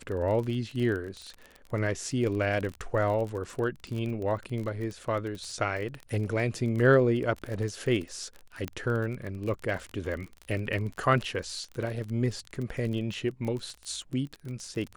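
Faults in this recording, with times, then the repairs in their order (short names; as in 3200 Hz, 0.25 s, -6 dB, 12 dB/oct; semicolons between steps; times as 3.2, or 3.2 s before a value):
crackle 32/s -33 dBFS
8.68 pop -18 dBFS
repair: de-click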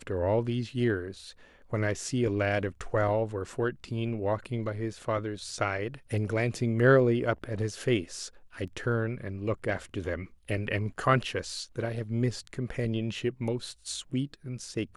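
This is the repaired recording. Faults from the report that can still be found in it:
8.68 pop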